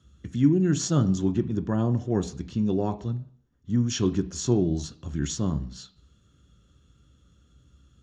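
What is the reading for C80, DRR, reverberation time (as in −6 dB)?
20.0 dB, 8.5 dB, 0.55 s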